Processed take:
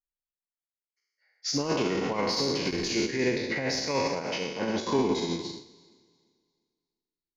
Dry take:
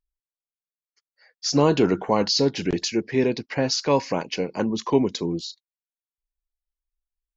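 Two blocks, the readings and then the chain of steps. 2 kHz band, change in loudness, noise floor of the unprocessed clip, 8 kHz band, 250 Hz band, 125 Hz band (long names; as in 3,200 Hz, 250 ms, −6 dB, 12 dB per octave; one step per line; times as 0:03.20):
+0.5 dB, −5.5 dB, below −85 dBFS, can't be measured, −6.5 dB, −8.0 dB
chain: peak hold with a decay on every bin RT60 1.43 s
in parallel at −6 dB: soft clipping −13.5 dBFS, distortion −13 dB
on the sum: parametric band 2,100 Hz +9 dB 0.34 octaves
on a send: delay that swaps between a low-pass and a high-pass 174 ms, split 1,500 Hz, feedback 58%, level −10 dB
on the sum: brickwall limiter −11 dBFS, peak gain reduction 9 dB
expander for the loud parts 2.5 to 1, over −29 dBFS
level −5 dB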